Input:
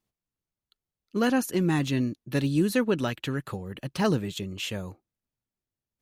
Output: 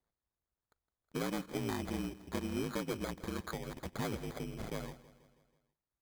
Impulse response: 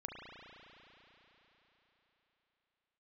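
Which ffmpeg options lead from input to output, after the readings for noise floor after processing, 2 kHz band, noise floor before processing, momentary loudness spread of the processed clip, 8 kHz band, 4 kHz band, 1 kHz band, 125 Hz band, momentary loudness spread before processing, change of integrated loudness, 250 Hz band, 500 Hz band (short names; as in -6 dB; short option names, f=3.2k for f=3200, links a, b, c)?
under -85 dBFS, -11.5 dB, under -85 dBFS, 6 LU, -9.0 dB, -11.5 dB, -9.5 dB, -13.0 dB, 11 LU, -12.0 dB, -13.0 dB, -11.5 dB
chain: -filter_complex "[0:a]lowpass=2.8k,equalizer=f=140:w=0.38:g=-10.5,acrossover=split=120|440[a][b][c];[a]acompressor=threshold=-47dB:ratio=4[d];[b]acompressor=threshold=-38dB:ratio=4[e];[c]acompressor=threshold=-43dB:ratio=4[f];[d][e][f]amix=inputs=3:normalize=0,asplit=2[g][h];[h]aeval=exprs='(mod(59.6*val(0)+1,2)-1)/59.6':c=same,volume=-12dB[i];[g][i]amix=inputs=2:normalize=0,aeval=exprs='val(0)*sin(2*PI*54*n/s)':c=same,acrusher=samples=16:mix=1:aa=0.000001,asplit=2[j][k];[k]aecho=0:1:162|324|486|648|810:0.133|0.0733|0.0403|0.0222|0.0122[l];[j][l]amix=inputs=2:normalize=0,volume=3dB"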